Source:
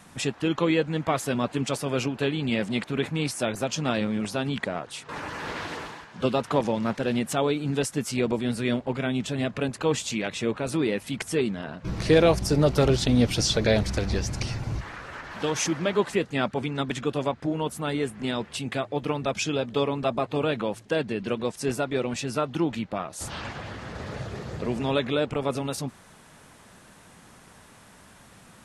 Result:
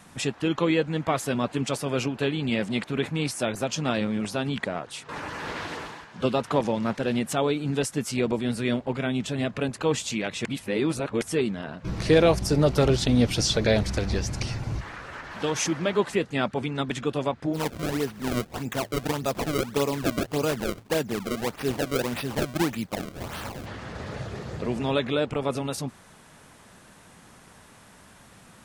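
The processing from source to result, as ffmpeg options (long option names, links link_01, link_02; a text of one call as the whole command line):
ffmpeg -i in.wav -filter_complex "[0:a]asplit=3[link_01][link_02][link_03];[link_01]afade=type=out:start_time=17.53:duration=0.02[link_04];[link_02]acrusher=samples=29:mix=1:aa=0.000001:lfo=1:lforange=46.4:lforate=1.7,afade=type=in:start_time=17.53:duration=0.02,afade=type=out:start_time=23.65:duration=0.02[link_05];[link_03]afade=type=in:start_time=23.65:duration=0.02[link_06];[link_04][link_05][link_06]amix=inputs=3:normalize=0,asplit=3[link_07][link_08][link_09];[link_07]atrim=end=10.452[link_10];[link_08]atrim=start=10.448:end=11.212,asetpts=PTS-STARTPTS,areverse[link_11];[link_09]atrim=start=11.208[link_12];[link_10][link_11]acrossfade=duration=0.004:curve1=hsin:curve2=hsin[link_13];[link_13][link_12]acrossfade=duration=0.004:curve1=hsin:curve2=hsin" out.wav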